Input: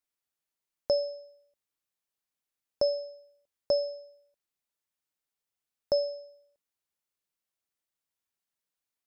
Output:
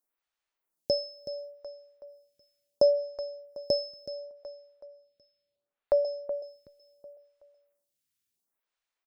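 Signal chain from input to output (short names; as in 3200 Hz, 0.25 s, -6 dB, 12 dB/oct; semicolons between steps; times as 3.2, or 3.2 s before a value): 1.03–3.01 de-hum 401.8 Hz, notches 3; 4.06–6.05 steep low-pass 4500 Hz 96 dB/oct; on a send: feedback echo 0.374 s, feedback 41%, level -13 dB; on the sum: photocell phaser 0.71 Hz; gain +6 dB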